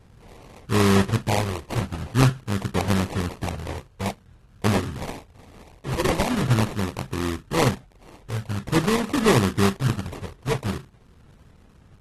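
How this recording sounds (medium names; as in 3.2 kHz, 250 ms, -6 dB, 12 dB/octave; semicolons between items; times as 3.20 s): a buzz of ramps at a fixed pitch in blocks of 16 samples; phasing stages 8, 0.46 Hz, lowest notch 230–4800 Hz; aliases and images of a low sample rate 1.5 kHz, jitter 20%; AAC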